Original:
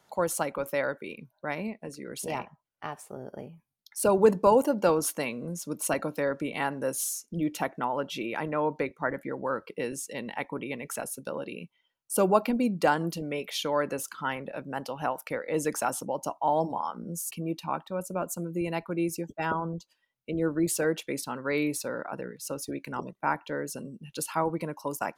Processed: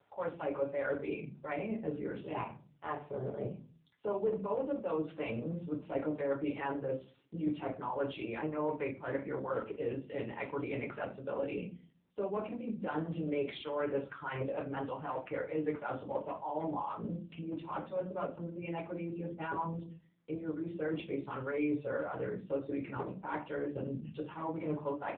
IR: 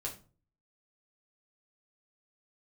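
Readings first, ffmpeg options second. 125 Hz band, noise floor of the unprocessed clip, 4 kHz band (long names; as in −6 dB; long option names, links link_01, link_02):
−4.5 dB, −76 dBFS, −13.5 dB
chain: -filter_complex "[0:a]acrossover=split=800[link_01][link_02];[link_01]aeval=exprs='val(0)*(1-0.5/2+0.5/2*cos(2*PI*6.4*n/s))':channel_layout=same[link_03];[link_02]aeval=exprs='val(0)*(1-0.5/2-0.5/2*cos(2*PI*6.4*n/s))':channel_layout=same[link_04];[link_03][link_04]amix=inputs=2:normalize=0,areverse,acompressor=threshold=-38dB:ratio=12,areverse,aemphasis=mode=reproduction:type=cd,aresample=16000,volume=32.5dB,asoftclip=hard,volume=-32.5dB,aresample=44100[link_05];[1:a]atrim=start_sample=2205[link_06];[link_05][link_06]afir=irnorm=-1:irlink=0,volume=6dB" -ar 8000 -c:a libopencore_amrnb -b:a 6700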